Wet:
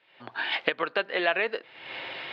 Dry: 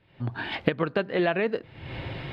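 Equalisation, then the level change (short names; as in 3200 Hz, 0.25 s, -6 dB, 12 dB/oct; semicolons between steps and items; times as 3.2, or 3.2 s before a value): BPF 530–3800 Hz; high shelf 2200 Hz +10.5 dB; 0.0 dB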